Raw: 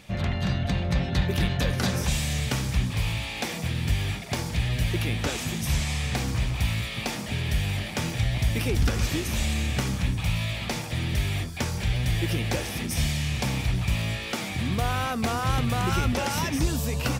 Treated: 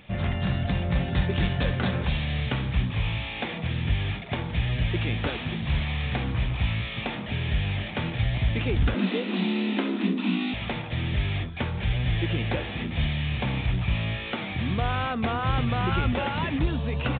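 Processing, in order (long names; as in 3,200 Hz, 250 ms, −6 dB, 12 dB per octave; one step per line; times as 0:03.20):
downsampling to 8,000 Hz
0:08.94–0:10.54: frequency shifter +140 Hz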